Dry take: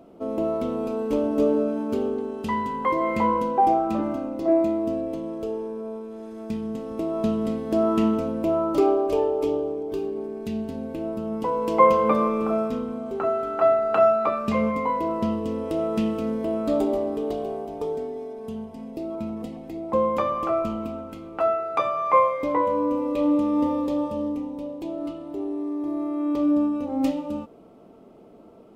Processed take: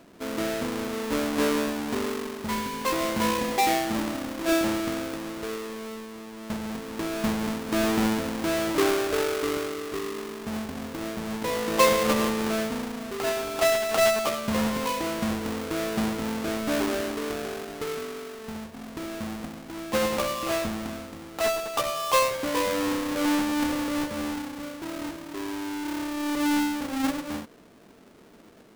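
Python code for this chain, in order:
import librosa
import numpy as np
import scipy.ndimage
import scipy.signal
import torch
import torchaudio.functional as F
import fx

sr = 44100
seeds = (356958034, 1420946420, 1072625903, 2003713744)

y = fx.halfwave_hold(x, sr)
y = F.gain(torch.from_numpy(y), -7.0).numpy()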